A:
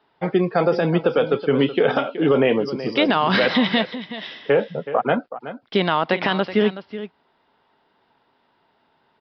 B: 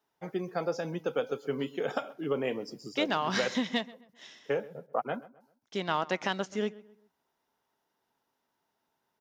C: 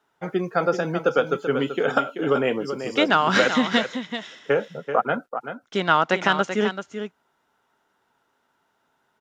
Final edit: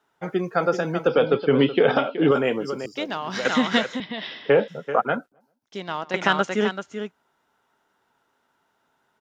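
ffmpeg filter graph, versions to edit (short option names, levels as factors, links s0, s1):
-filter_complex "[0:a]asplit=2[s0][s1];[1:a]asplit=2[s2][s3];[2:a]asplit=5[s4][s5][s6][s7][s8];[s4]atrim=end=1.072[s9];[s0]atrim=start=1.068:end=2.312[s10];[s5]atrim=start=2.308:end=2.862[s11];[s2]atrim=start=2.858:end=3.452[s12];[s6]atrim=start=3.448:end=4.002[s13];[s1]atrim=start=3.998:end=4.682[s14];[s7]atrim=start=4.678:end=5.322[s15];[s3]atrim=start=5.318:end=6.142[s16];[s8]atrim=start=6.138[s17];[s9][s10]acrossfade=d=0.004:c1=hsin:c2=hsin[s18];[s18][s11]acrossfade=d=0.004:c1=hsin:c2=hsin[s19];[s19][s12]acrossfade=d=0.004:c1=hsin:c2=hsin[s20];[s20][s13]acrossfade=d=0.004:c1=hsin:c2=hsin[s21];[s21][s14]acrossfade=d=0.004:c1=hsin:c2=hsin[s22];[s22][s15]acrossfade=d=0.004:c1=hsin:c2=hsin[s23];[s23][s16]acrossfade=d=0.004:c1=hsin:c2=hsin[s24];[s24][s17]acrossfade=d=0.004:c1=hsin:c2=hsin"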